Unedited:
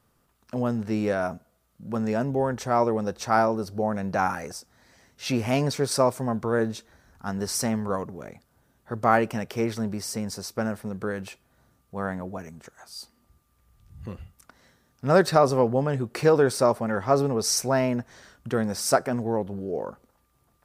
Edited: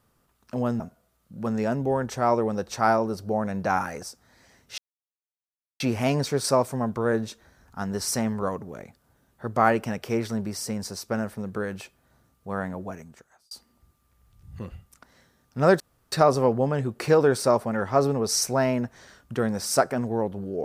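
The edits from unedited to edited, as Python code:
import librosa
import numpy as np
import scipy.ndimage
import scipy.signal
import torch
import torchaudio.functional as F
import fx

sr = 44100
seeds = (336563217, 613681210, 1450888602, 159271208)

y = fx.edit(x, sr, fx.cut(start_s=0.8, length_s=0.49),
    fx.insert_silence(at_s=5.27, length_s=1.02),
    fx.fade_out_span(start_s=12.39, length_s=0.59),
    fx.insert_room_tone(at_s=15.27, length_s=0.32), tone=tone)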